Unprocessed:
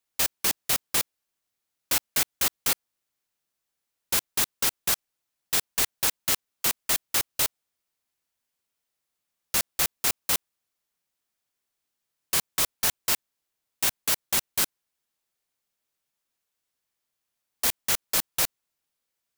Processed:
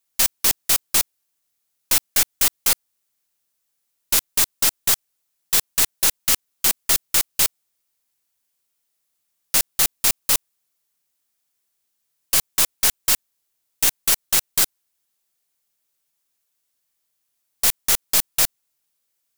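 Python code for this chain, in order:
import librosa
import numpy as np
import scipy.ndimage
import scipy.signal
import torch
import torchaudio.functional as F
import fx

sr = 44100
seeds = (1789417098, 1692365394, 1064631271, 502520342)

y = fx.tracing_dist(x, sr, depth_ms=0.036)
y = fx.high_shelf(y, sr, hz=5000.0, db=9.0)
y = F.gain(torch.from_numpy(y), 1.5).numpy()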